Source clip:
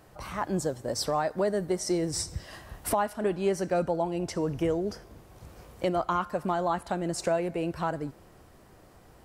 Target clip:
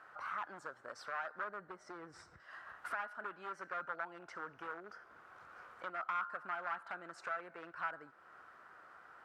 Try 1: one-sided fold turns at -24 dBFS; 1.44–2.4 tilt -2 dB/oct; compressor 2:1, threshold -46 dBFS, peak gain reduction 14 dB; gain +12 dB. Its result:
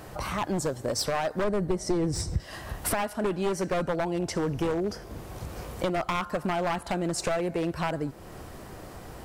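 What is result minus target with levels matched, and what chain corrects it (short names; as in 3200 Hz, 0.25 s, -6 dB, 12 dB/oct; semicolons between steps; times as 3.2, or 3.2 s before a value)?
1000 Hz band -4.5 dB
one-sided fold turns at -24 dBFS; 1.44–2.4 tilt -2 dB/oct; compressor 2:1, threshold -46 dBFS, peak gain reduction 14 dB; band-pass 1400 Hz, Q 5.4; gain +12 dB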